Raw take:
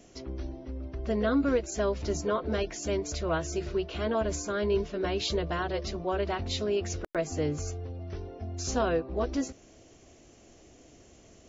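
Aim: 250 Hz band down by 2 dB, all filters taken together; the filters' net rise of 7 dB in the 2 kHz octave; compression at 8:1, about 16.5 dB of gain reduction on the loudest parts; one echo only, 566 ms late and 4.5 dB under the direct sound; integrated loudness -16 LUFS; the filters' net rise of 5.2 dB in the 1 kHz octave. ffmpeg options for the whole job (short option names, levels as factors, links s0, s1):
-af "equalizer=f=250:t=o:g=-3,equalizer=f=1000:t=o:g=5,equalizer=f=2000:t=o:g=7.5,acompressor=threshold=0.0112:ratio=8,aecho=1:1:566:0.596,volume=18.8"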